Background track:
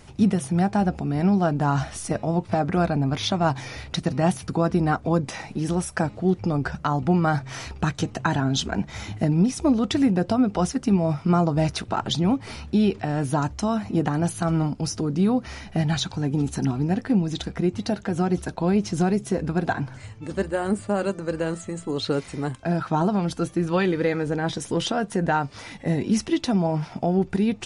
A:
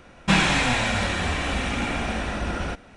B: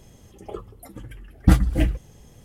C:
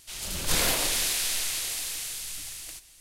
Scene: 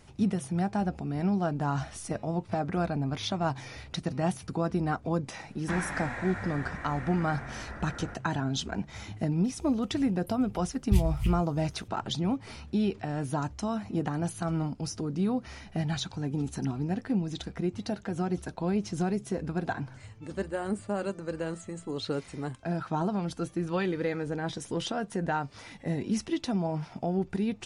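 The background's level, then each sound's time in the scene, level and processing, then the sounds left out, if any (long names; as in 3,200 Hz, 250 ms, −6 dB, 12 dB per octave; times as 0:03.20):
background track −7.5 dB
0:05.40: mix in A −15.5 dB + high shelf with overshoot 2,300 Hz −8 dB, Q 3
0:09.44: mix in B −7 dB + elliptic band-stop filter 140–2,500 Hz
not used: C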